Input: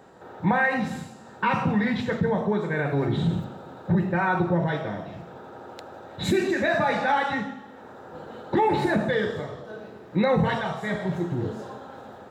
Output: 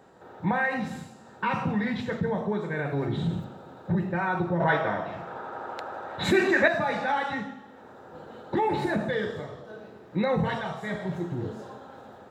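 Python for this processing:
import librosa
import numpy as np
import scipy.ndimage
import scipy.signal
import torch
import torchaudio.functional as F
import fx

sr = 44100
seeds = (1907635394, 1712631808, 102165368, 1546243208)

y = fx.peak_eq(x, sr, hz=1200.0, db=13.0, octaves=2.6, at=(4.6, 6.68))
y = F.gain(torch.from_numpy(y), -4.0).numpy()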